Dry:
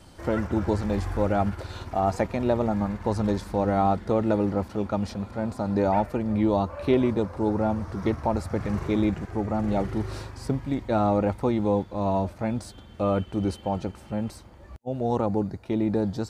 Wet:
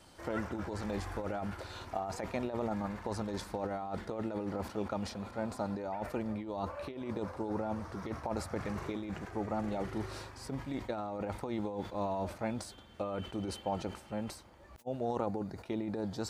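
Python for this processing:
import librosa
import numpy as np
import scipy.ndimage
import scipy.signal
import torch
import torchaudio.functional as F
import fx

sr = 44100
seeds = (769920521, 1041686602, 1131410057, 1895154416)

y = fx.over_compress(x, sr, threshold_db=-25.0, ratio=-0.5)
y = fx.low_shelf(y, sr, hz=270.0, db=-9.5)
y = fx.sustainer(y, sr, db_per_s=130.0)
y = y * 10.0 ** (-6.0 / 20.0)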